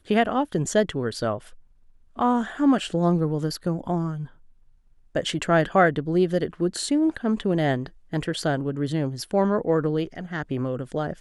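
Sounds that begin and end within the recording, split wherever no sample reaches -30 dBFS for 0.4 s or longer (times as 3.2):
2.19–4.24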